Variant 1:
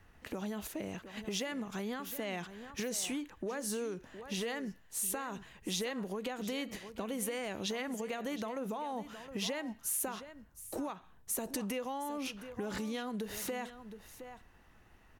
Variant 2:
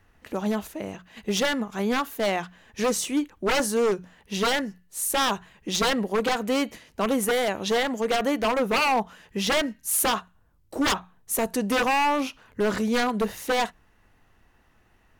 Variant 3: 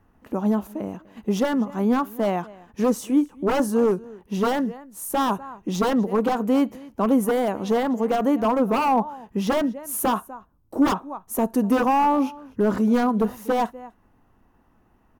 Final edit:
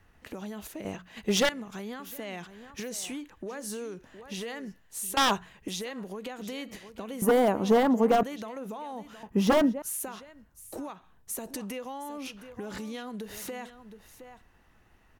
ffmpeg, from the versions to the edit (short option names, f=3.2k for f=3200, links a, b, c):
-filter_complex "[1:a]asplit=2[a][b];[2:a]asplit=2[c][d];[0:a]asplit=5[e][f][g][h][i];[e]atrim=end=0.852[j];[a]atrim=start=0.848:end=1.492[k];[f]atrim=start=1.488:end=5.172[l];[b]atrim=start=5.168:end=5.682[m];[g]atrim=start=5.678:end=7.222[n];[c]atrim=start=7.218:end=8.232[o];[h]atrim=start=8.228:end=9.232[p];[d]atrim=start=9.228:end=9.822[q];[i]atrim=start=9.818[r];[j][k]acrossfade=d=0.004:c1=hsin:c2=hsin[s];[s][l]acrossfade=d=0.004:c1=hsin:c2=hsin[t];[t][m]acrossfade=d=0.004:c1=hsin:c2=hsin[u];[u][n]acrossfade=d=0.004:c1=hsin:c2=hsin[v];[v][o]acrossfade=d=0.004:c1=hsin:c2=hsin[w];[w][p]acrossfade=d=0.004:c1=hsin:c2=hsin[x];[x][q]acrossfade=d=0.004:c1=hsin:c2=hsin[y];[y][r]acrossfade=d=0.004:c1=hsin:c2=hsin"